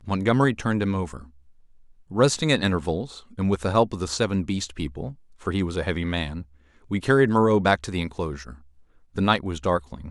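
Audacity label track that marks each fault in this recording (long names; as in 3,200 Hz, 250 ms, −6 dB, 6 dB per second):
2.370000	2.370000	drop-out 2.1 ms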